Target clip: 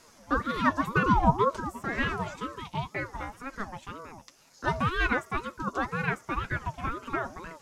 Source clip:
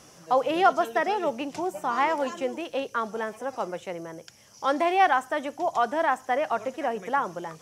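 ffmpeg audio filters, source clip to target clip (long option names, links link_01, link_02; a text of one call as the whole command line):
ffmpeg -i in.wav -filter_complex "[0:a]flanger=delay=6.3:depth=1.3:regen=43:speed=0.53:shape=triangular,asettb=1/sr,asplit=3[link_01][link_02][link_03];[link_01]atrim=end=0.874[link_04];[link_02]atrim=start=0.87:end=1.57,asetpts=PTS-STARTPTS,afade=type=in:duration=0.004:curve=qsin,afade=type=out:start_time=0.696:duration=0.004:curve=qsin,lowshelf=frequency=660:width_type=q:width=1.5:gain=10[link_05];[link_03]atrim=start=1.566[link_06];[link_04][link_05]acrossfade=duration=0.004:curve1=hsin:curve2=qsin[link_07];[link_07][link_06]acrossfade=duration=0.004:curve1=qsin:curve2=hsin,aeval=exprs='val(0)*sin(2*PI*590*n/s+590*0.4/2*sin(2*PI*2*n/s))':channel_layout=same,volume=2dB" out.wav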